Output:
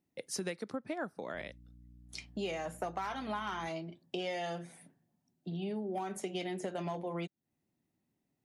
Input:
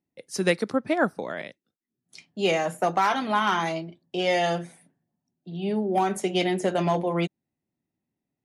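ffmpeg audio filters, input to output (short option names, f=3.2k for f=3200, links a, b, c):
-filter_complex "[0:a]acompressor=threshold=-39dB:ratio=5,asettb=1/sr,asplit=3[a][b][c];[a]atrim=end=1.344[d];[b]atrim=start=1.34:end=3.68,asetpts=PTS-STARTPTS,afade=t=in:d=0.004:c=qsin,afade=t=out:st=2.336:d=0.004:c=qsin,aeval=exprs='val(0)+0.00141*(sin(2*PI*60*n/s)+sin(2*PI*2*60*n/s)/2+sin(2*PI*3*60*n/s)/3+sin(2*PI*4*60*n/s)/4+sin(2*PI*5*60*n/s)/5)':c=same[e];[c]atrim=start=3.676[f];[d][e]acrossfade=d=0.004:c1=hsin:c2=qsin[g];[g][f]acrossfade=d=0.004:c1=qsin:c2=hsin,volume=2dB"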